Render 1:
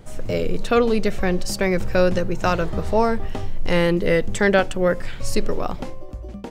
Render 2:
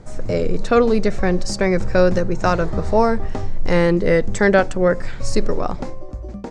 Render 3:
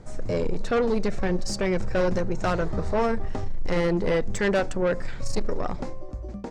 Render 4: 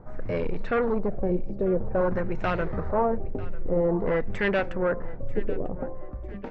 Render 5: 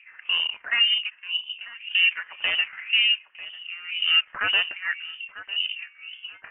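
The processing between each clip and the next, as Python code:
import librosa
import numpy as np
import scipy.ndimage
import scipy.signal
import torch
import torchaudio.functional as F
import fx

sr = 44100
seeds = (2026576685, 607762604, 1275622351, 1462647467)

y1 = scipy.signal.sosfilt(scipy.signal.butter(4, 8000.0, 'lowpass', fs=sr, output='sos'), x)
y1 = fx.peak_eq(y1, sr, hz=3000.0, db=-9.5, octaves=0.62)
y1 = F.gain(torch.from_numpy(y1), 3.0).numpy()
y2 = 10.0 ** (-13.5 / 20.0) * np.tanh(y1 / 10.0 ** (-13.5 / 20.0))
y2 = F.gain(torch.from_numpy(y2), -4.0).numpy()
y3 = fx.filter_lfo_lowpass(y2, sr, shape='sine', hz=0.5, low_hz=410.0, high_hz=2600.0, q=1.7)
y3 = fx.echo_feedback(y3, sr, ms=945, feedback_pct=37, wet_db=-18.5)
y3 = F.gain(torch.from_numpy(y3), -2.5).numpy()
y4 = fx.filter_lfo_highpass(y3, sr, shape='sine', hz=1.9, low_hz=280.0, high_hz=1600.0, q=2.9)
y4 = fx.freq_invert(y4, sr, carrier_hz=3300)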